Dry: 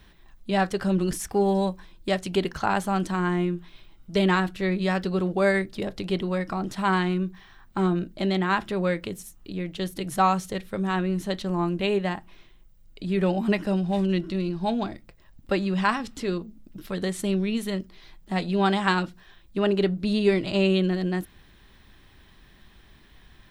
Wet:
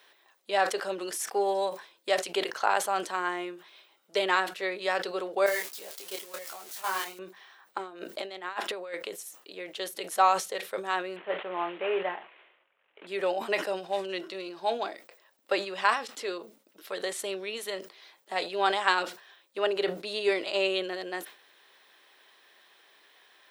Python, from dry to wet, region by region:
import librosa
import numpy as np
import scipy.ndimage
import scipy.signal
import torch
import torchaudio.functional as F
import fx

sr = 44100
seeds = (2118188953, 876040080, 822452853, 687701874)

y = fx.chain(x, sr, fx.crossing_spikes(level_db=-19.0),
    fx.level_steps(step_db=12),
    fx.detune_double(cents=23), at=(5.46, 7.19))
y = fx.chain(y, sr, fx.highpass(hz=51.0, slope=12),
    fx.over_compress(threshold_db=-30.0, ratio=-0.5), at=(7.78, 8.94))
y = fx.chain(y, sr, fx.cvsd(bps=16000),
    fx.doubler(ms=22.0, db=-12.5), at=(11.16, 13.07))
y = scipy.signal.sosfilt(scipy.signal.cheby1(3, 1.0, 470.0, 'highpass', fs=sr, output='sos'), y)
y = fx.sustainer(y, sr, db_per_s=130.0)